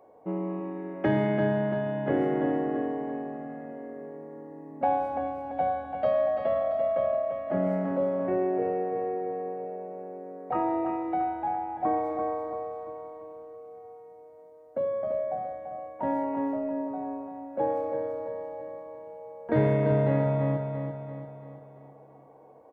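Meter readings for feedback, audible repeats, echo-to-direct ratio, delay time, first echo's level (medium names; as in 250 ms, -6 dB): 49%, 5, -5.5 dB, 339 ms, -6.5 dB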